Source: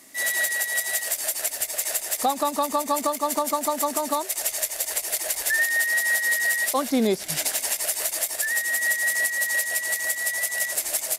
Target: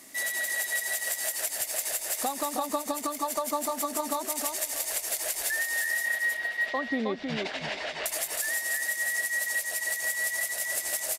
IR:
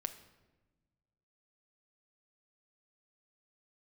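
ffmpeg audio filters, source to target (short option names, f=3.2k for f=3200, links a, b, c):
-filter_complex "[0:a]asettb=1/sr,asplit=3[a][b][c];[a]atrim=end=6.054[d];[b]atrim=start=6.05:end=8.06,asetpts=PTS-STARTPTS,afade=t=in:d=0.004:c=qsin,afade=t=out:st=2.006:d=0.004:c=qsin,lowpass=f=3.7k:w=0.5412,lowpass=f=3.7k:w=1.3066[e];[c]atrim=start=8.056[f];[d][e]acrossfade=d=0.004:c1=hsin:c2=qsin[g];[g][f]acrossfade=d=0.004:c1=qsin:c2=hsin,acompressor=threshold=-29dB:ratio=4,aecho=1:1:316|632|948:0.596|0.119|0.0238"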